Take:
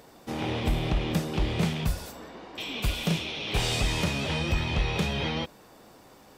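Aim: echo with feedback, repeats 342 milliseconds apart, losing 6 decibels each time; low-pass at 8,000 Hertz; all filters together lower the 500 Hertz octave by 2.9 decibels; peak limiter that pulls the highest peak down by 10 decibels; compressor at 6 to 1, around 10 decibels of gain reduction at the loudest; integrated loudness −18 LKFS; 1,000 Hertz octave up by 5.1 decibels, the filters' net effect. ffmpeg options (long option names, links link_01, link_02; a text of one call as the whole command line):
ffmpeg -i in.wav -af "lowpass=8000,equalizer=frequency=500:width_type=o:gain=-6,equalizer=frequency=1000:width_type=o:gain=8.5,acompressor=threshold=-32dB:ratio=6,alimiter=level_in=7.5dB:limit=-24dB:level=0:latency=1,volume=-7.5dB,aecho=1:1:342|684|1026|1368|1710|2052:0.501|0.251|0.125|0.0626|0.0313|0.0157,volume=21.5dB" out.wav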